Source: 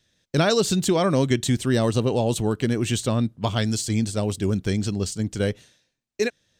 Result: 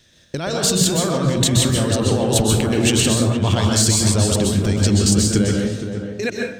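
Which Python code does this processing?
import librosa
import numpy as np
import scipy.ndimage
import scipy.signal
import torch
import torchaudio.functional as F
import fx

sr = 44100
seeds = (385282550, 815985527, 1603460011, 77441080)

p1 = fx.hum_notches(x, sr, base_hz=60, count=3)
p2 = fx.over_compress(p1, sr, threshold_db=-28.0, ratio=-1.0)
p3 = p2 + fx.echo_tape(p2, sr, ms=469, feedback_pct=35, wet_db=-6, lp_hz=1200.0, drive_db=6.0, wow_cents=34, dry=0)
p4 = fx.rev_plate(p3, sr, seeds[0], rt60_s=0.58, hf_ratio=0.65, predelay_ms=115, drr_db=0.0)
y = p4 * 10.0 ** (7.5 / 20.0)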